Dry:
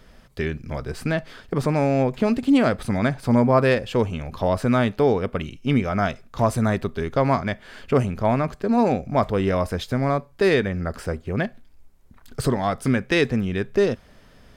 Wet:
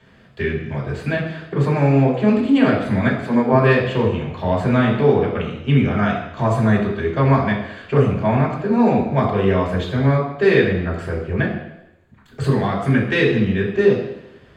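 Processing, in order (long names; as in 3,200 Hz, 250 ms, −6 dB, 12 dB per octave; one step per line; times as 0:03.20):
0:03.08–0:03.52: high-pass filter 190 Hz 24 dB per octave
convolution reverb RT60 0.90 s, pre-delay 3 ms, DRR −6 dB
level −13 dB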